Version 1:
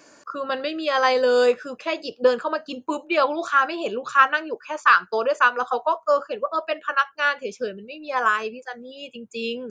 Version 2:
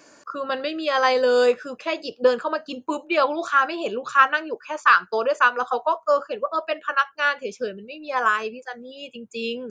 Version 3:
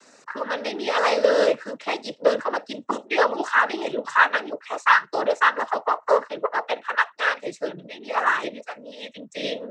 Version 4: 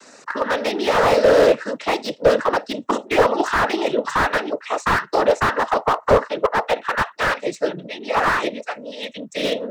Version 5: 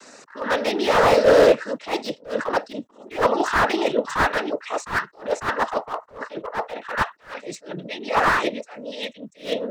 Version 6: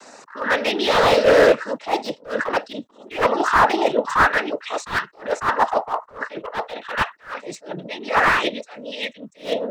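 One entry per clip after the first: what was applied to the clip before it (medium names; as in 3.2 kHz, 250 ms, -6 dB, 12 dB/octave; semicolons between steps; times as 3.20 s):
no audible change
bass shelf 140 Hz -7.5 dB; noise-vocoded speech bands 12
slew-rate limiter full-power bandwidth 93 Hz; trim +7 dB
attacks held to a fixed rise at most 190 dB/s
sweeping bell 0.52 Hz 770–3800 Hz +8 dB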